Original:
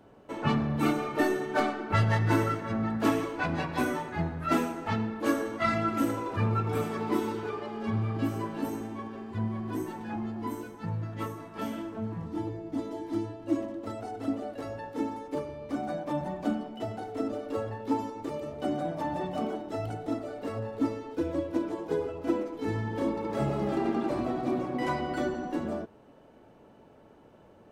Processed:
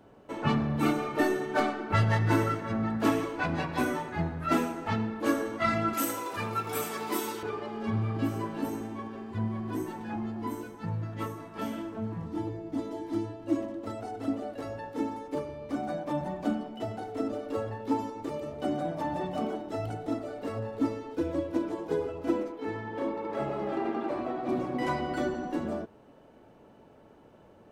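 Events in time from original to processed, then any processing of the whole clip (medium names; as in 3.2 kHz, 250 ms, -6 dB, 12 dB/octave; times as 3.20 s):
5.93–7.43 s: RIAA curve recording
22.52–24.49 s: tone controls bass -11 dB, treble -11 dB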